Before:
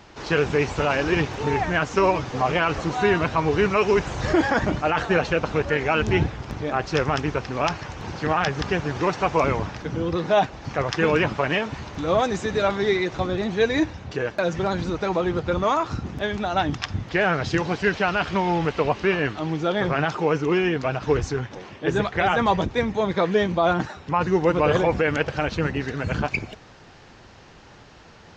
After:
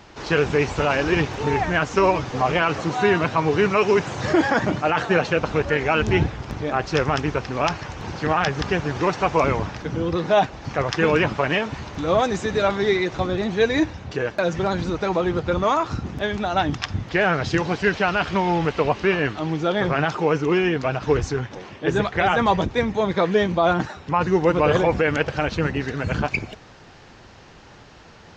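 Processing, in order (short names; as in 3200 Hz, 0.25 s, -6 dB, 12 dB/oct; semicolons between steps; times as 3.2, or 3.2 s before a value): 2.62–5.37 HPF 95 Hz 24 dB/oct; gain +1.5 dB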